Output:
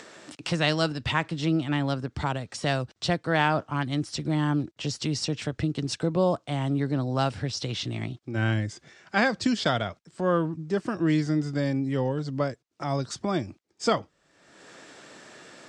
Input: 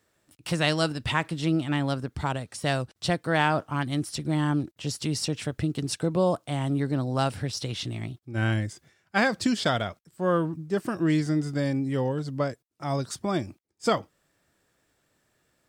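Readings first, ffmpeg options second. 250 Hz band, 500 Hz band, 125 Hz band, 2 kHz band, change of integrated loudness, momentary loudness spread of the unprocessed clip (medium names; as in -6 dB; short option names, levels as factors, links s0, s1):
0.0 dB, 0.0 dB, 0.0 dB, 0.0 dB, 0.0 dB, 7 LU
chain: -filter_complex "[0:a]lowpass=f=7300:w=0.5412,lowpass=f=7300:w=1.3066,acrossover=split=170[s0][s1];[s1]acompressor=mode=upward:threshold=0.0398:ratio=2.5[s2];[s0][s2]amix=inputs=2:normalize=0"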